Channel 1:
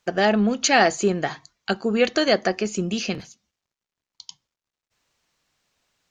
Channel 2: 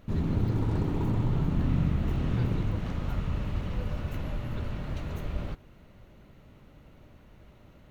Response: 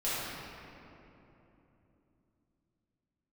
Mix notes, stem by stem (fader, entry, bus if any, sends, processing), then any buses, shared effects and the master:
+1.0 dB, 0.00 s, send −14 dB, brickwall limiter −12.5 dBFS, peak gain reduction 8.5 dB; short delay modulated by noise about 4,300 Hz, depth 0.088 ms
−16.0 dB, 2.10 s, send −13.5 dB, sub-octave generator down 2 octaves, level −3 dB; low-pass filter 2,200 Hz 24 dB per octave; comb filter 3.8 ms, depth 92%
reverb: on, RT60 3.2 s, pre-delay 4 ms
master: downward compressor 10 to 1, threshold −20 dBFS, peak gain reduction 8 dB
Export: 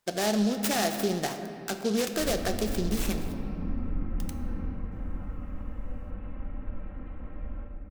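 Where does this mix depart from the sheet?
stem 1 +1.0 dB → −6.5 dB
stem 2: send −13.5 dB → −6 dB

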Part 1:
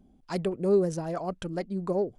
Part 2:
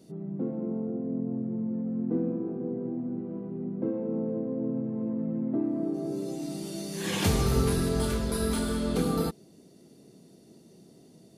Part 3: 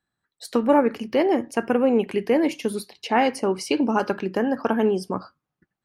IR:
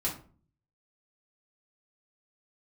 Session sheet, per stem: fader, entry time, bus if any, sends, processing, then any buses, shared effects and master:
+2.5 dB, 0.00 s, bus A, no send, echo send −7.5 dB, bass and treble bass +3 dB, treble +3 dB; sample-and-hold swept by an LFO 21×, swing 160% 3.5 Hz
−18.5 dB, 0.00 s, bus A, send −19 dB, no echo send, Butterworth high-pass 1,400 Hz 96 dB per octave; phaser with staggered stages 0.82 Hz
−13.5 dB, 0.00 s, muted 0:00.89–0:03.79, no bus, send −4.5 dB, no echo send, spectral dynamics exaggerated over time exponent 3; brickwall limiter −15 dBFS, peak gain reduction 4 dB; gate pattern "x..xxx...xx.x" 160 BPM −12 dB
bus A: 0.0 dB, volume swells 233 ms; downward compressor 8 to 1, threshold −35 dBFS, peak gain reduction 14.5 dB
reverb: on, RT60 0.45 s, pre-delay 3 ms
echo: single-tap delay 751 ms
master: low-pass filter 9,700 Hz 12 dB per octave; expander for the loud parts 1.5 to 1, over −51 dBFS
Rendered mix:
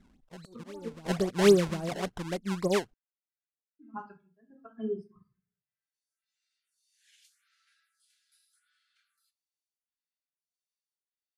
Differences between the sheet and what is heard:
stem 1 +2.5 dB → +10.5 dB
stem 2 −18.5 dB → −12.5 dB
reverb return +7.5 dB

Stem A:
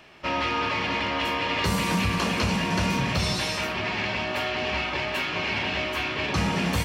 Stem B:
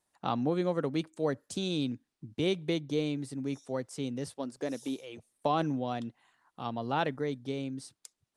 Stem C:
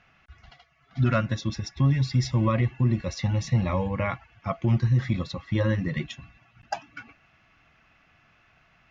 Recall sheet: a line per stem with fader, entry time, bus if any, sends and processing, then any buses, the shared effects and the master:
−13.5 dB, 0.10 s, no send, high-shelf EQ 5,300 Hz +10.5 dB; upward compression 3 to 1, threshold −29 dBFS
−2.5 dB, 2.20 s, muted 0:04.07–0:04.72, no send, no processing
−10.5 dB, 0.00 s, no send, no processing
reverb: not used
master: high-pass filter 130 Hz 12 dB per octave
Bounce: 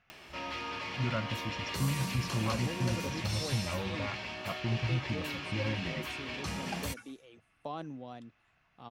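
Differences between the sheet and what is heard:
stem B −2.5 dB → −11.5 dB
master: missing high-pass filter 130 Hz 12 dB per octave

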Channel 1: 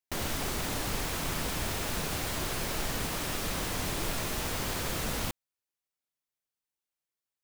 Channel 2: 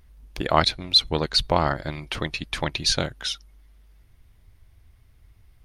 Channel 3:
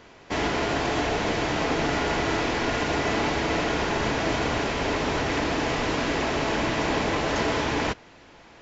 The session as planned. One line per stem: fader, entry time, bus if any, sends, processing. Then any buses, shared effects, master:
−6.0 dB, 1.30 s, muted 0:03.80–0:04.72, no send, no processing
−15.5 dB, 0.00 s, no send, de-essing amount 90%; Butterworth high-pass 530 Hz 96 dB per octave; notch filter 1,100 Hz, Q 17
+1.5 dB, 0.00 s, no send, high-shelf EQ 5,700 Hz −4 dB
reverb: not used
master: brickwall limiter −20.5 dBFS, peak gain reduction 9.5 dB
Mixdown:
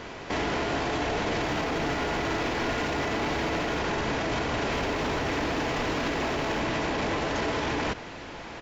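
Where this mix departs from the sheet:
stem 1 −6.0 dB → −13.0 dB
stem 3 +1.5 dB → +10.5 dB

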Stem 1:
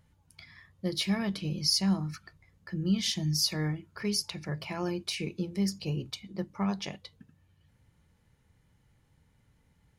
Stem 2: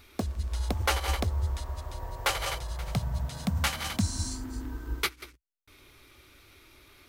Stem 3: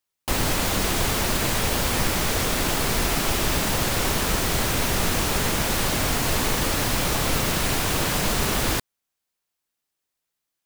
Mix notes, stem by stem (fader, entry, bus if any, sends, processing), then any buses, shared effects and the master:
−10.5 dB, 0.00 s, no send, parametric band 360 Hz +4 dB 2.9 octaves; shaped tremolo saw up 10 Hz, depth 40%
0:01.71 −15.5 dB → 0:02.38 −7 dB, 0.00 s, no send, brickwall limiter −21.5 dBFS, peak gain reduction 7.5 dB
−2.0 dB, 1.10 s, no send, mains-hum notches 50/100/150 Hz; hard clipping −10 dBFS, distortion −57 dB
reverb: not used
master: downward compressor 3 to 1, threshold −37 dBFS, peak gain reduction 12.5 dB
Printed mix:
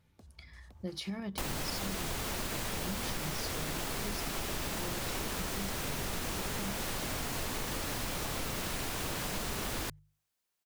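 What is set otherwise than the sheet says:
stem 1 −10.5 dB → −3.0 dB
stem 2 −15.5 dB → −23.5 dB

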